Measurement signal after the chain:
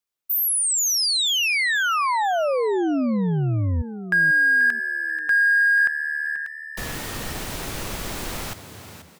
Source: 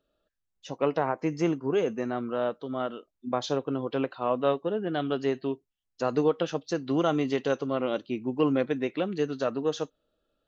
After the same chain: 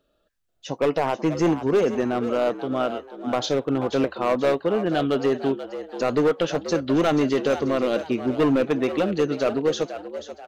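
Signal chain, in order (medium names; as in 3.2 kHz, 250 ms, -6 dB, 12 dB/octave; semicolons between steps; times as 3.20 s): hard clipper -22 dBFS; frequency-shifting echo 485 ms, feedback 36%, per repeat +75 Hz, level -11.5 dB; trim +7 dB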